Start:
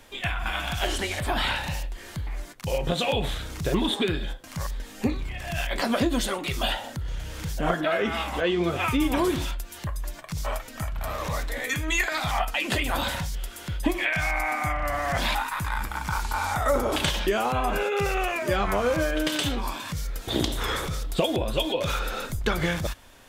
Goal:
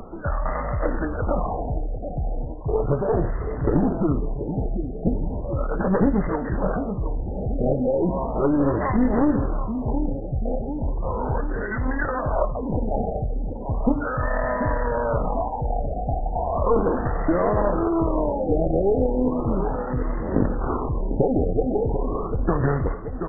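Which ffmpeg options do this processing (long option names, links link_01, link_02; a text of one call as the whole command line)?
ffmpeg -i in.wav -af "firequalizer=gain_entry='entry(560,0);entry(1400,-4);entry(2700,-12);entry(4400,3);entry(7000,9)':delay=0.05:min_phase=1,acompressor=mode=upward:threshold=-33dB:ratio=2.5,aecho=1:1:737|1474|2211|2948|3685|4422|5159:0.316|0.187|0.11|0.0649|0.0383|0.0226|0.0133,aeval=exprs='clip(val(0),-1,0.0398)':channel_layout=same,asetrate=36028,aresample=44100,atempo=1.22405,afftfilt=real='re*lt(b*sr/1024,810*pow(2100/810,0.5+0.5*sin(2*PI*0.36*pts/sr)))':imag='im*lt(b*sr/1024,810*pow(2100/810,0.5+0.5*sin(2*PI*0.36*pts/sr)))':win_size=1024:overlap=0.75,volume=7dB" out.wav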